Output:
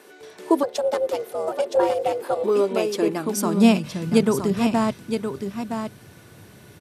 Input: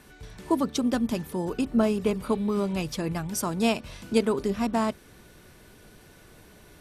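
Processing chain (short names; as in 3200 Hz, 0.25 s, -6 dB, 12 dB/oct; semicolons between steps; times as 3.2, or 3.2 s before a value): on a send: echo 0.967 s -7 dB; 0.63–2.44 on the sum: ring modulator 300 Hz; high-pass sweep 410 Hz -> 110 Hz, 2.84–4.43; gain +3 dB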